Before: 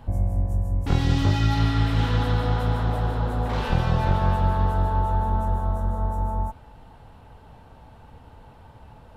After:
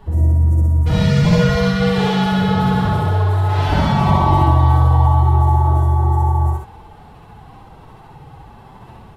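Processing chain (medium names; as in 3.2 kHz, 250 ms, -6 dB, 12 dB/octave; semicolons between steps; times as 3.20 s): formant-preserving pitch shift +9.5 st; loudspeakers at several distances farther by 22 m 0 dB, 44 m -4 dB; trim +4 dB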